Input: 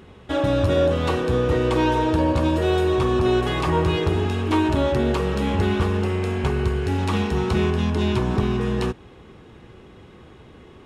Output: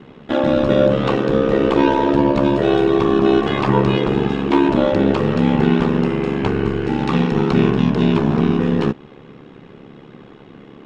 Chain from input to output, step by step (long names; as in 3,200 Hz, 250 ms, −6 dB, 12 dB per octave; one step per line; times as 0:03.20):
low shelf with overshoot 140 Hz −7.5 dB, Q 3
ring modulation 35 Hz
high-frequency loss of the air 120 metres
level +7.5 dB